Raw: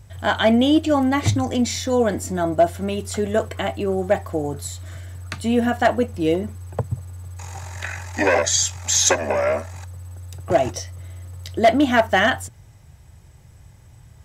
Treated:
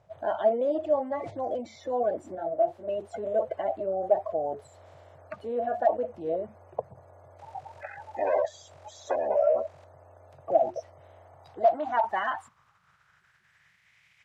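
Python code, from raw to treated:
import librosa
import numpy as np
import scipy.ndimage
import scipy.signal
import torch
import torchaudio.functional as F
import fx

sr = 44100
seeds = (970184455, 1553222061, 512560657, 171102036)

p1 = fx.spec_quant(x, sr, step_db=30)
p2 = fx.over_compress(p1, sr, threshold_db=-29.0, ratio=-1.0)
p3 = p1 + (p2 * 10.0 ** (-2.0 / 20.0))
p4 = fx.filter_sweep_bandpass(p3, sr, from_hz=620.0, to_hz=2200.0, start_s=11.11, end_s=14.08, q=4.3)
p5 = fx.detune_double(p4, sr, cents=30, at=(2.35, 2.88))
y = p5 * 10.0 ** (-1.5 / 20.0)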